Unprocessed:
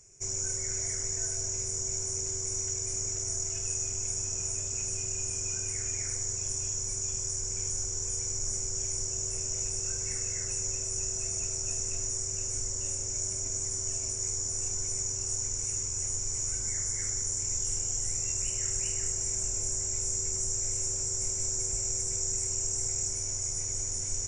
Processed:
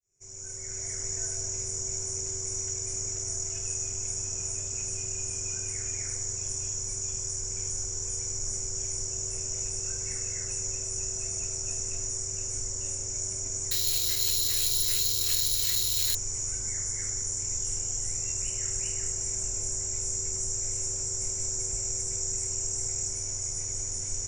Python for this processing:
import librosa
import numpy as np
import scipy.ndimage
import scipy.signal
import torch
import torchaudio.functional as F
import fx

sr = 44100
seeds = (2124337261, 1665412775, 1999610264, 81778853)

y = fx.fade_in_head(x, sr, length_s=1.11)
y = fx.resample_bad(y, sr, factor=4, down='none', up='zero_stuff', at=(13.71, 16.15))